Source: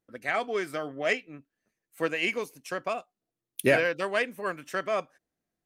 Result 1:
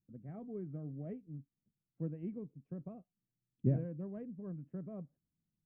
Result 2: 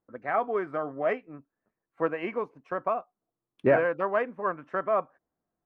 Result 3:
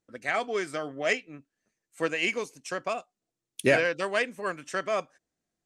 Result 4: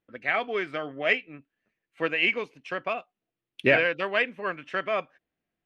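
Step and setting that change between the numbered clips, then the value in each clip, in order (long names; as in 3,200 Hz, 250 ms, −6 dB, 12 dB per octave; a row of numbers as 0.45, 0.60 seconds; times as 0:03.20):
low-pass with resonance, frequency: 160, 1,100, 7,600, 2,800 Hertz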